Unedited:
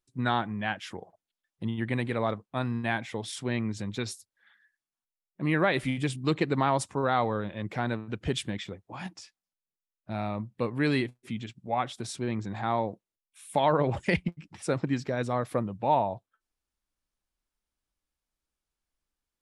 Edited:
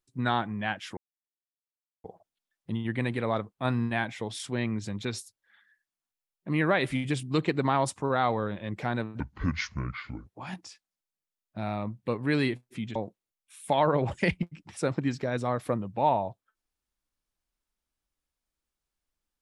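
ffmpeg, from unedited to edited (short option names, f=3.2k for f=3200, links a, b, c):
-filter_complex "[0:a]asplit=7[a][b][c][d][e][f][g];[a]atrim=end=0.97,asetpts=PTS-STARTPTS,afade=t=out:st=0.966:d=0.004:c=hsin,apad=pad_dur=1.07[h];[b]atrim=start=0.97:end=2.582,asetpts=PTS-STARTPTS,afade=t=in:d=0.004:c=hsin[i];[c]atrim=start=2.578:end=2.832,asetpts=PTS-STARTPTS,volume=3dB[j];[d]atrim=start=2.828:end=8.134[k];[e]atrim=start=8.13:end=8.79,asetpts=PTS-STARTPTS,asetrate=27342,aresample=44100,atrim=end_sample=46945,asetpts=PTS-STARTPTS[l];[f]atrim=start=8.786:end=11.482[m];[g]atrim=start=12.808[n];[h][i]concat=n=2:v=0:a=1[o];[o][j]acrossfade=d=0.004:c1=hsin:c2=hsin[p];[p][k]acrossfade=d=0.004:c1=hsin:c2=hsin[q];[q][l]acrossfade=d=0.004:c1=hsin:c2=hsin[r];[r][m]acrossfade=d=0.004:c1=hsin:c2=hsin[s];[s][n]acrossfade=d=0.004:c1=hsin:c2=hsin"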